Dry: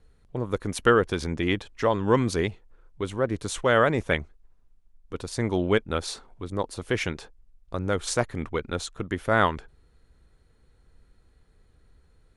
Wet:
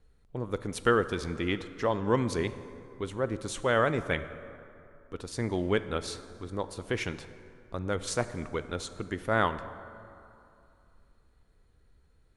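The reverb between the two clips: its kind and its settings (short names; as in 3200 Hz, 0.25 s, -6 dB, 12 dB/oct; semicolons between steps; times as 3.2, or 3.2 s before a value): plate-style reverb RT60 2.7 s, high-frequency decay 0.5×, DRR 12 dB; gain -5 dB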